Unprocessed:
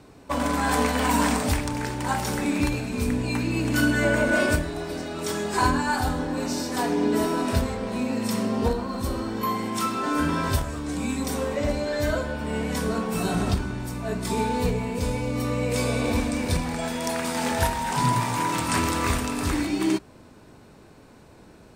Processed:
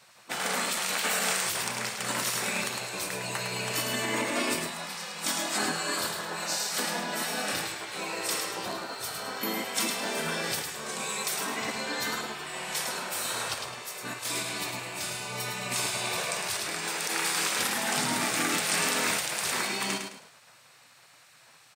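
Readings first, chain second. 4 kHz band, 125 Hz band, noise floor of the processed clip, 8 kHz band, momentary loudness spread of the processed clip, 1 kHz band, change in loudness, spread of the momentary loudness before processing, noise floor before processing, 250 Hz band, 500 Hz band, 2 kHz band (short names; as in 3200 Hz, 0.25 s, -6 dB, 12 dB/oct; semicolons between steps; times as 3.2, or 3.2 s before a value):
+3.5 dB, -16.0 dB, -57 dBFS, +4.0 dB, 8 LU, -6.5 dB, -4.0 dB, 7 LU, -50 dBFS, -13.5 dB, -9.0 dB, -1.5 dB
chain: limiter -15.5 dBFS, peak gain reduction 7.5 dB; HPF 170 Hz 24 dB/oct; tilt shelf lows -4.5 dB, about 850 Hz; feedback echo 0.106 s, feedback 33%, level -6 dB; spectral gate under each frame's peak -10 dB weak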